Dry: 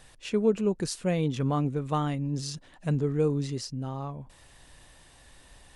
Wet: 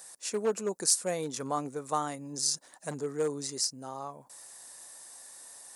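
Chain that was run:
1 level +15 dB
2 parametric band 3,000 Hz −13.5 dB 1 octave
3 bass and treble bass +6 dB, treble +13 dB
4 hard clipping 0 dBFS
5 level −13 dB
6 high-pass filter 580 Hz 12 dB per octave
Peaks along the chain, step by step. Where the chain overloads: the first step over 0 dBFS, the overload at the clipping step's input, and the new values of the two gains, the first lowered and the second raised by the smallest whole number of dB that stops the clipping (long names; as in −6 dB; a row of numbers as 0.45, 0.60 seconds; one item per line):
+2.0, +2.0, +6.5, 0.0, −13.0, −12.0 dBFS
step 1, 6.5 dB
step 1 +8 dB, step 5 −6 dB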